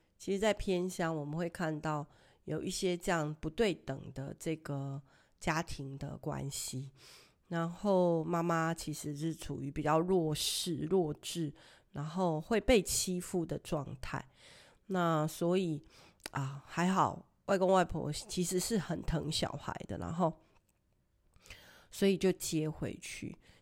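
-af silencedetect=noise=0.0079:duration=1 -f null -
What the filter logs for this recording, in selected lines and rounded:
silence_start: 20.31
silence_end: 21.46 | silence_duration: 1.15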